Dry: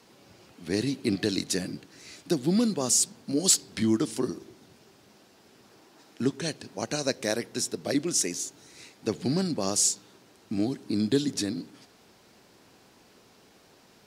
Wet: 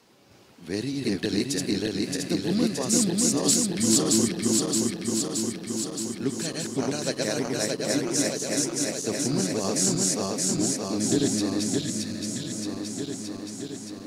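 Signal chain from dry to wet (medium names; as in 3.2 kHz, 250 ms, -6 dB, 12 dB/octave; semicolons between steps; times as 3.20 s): backward echo that repeats 311 ms, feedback 83%, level -0.5 dB; spectral replace 11.81–12.58 s, 270–1600 Hz after; trim -2 dB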